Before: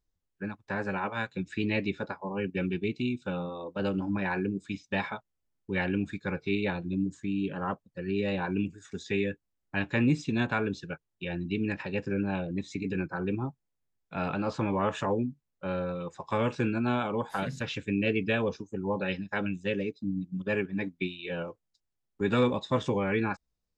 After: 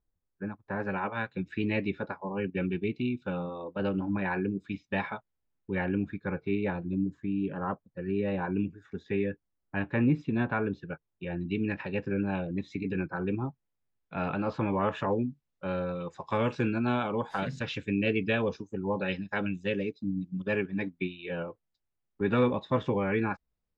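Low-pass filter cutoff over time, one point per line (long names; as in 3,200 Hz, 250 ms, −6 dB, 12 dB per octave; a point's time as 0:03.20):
1,500 Hz
from 0:00.80 2,800 Hz
from 0:05.75 1,800 Hz
from 0:11.41 3,200 Hz
from 0:15.13 5,500 Hz
from 0:20.90 2,700 Hz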